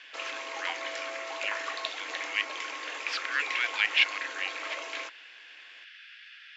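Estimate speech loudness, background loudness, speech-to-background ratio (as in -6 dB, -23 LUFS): -31.0 LUFS, -35.5 LUFS, 4.5 dB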